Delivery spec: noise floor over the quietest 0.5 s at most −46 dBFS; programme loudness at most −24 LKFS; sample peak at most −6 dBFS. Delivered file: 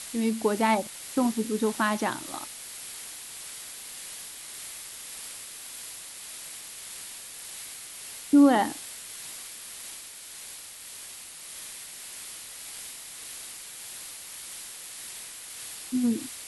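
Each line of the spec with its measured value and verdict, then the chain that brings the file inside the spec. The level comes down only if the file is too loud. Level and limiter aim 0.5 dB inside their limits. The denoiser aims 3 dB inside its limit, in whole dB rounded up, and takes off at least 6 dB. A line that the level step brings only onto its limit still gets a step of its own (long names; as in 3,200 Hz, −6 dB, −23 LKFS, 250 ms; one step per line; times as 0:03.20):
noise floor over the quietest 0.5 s −43 dBFS: out of spec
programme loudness −31.5 LKFS: in spec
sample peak −10.5 dBFS: in spec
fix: broadband denoise 6 dB, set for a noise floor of −43 dBFS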